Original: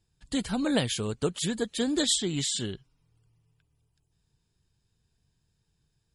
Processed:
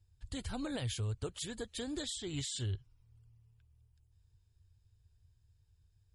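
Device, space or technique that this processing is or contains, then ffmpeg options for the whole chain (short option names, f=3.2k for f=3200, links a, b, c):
car stereo with a boomy subwoofer: -af "lowshelf=f=130:t=q:w=3:g=10.5,alimiter=limit=-23dB:level=0:latency=1:release=208,volume=-6.5dB"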